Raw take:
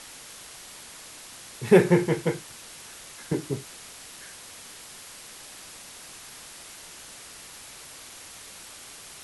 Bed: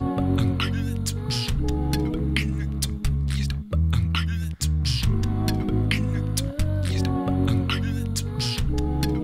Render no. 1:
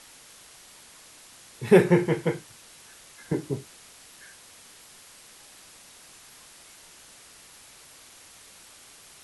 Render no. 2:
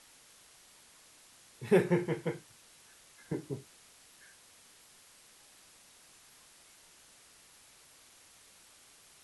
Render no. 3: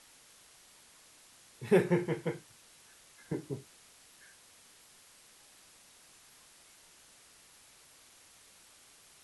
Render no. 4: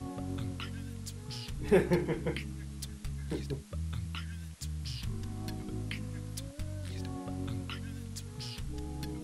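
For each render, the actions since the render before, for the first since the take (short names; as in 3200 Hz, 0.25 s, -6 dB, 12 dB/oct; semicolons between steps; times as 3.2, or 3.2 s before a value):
noise print and reduce 6 dB
gain -9 dB
nothing audible
add bed -15.5 dB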